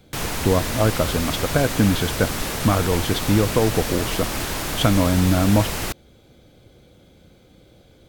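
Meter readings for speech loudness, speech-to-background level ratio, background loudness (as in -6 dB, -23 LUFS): -21.5 LUFS, 4.5 dB, -26.0 LUFS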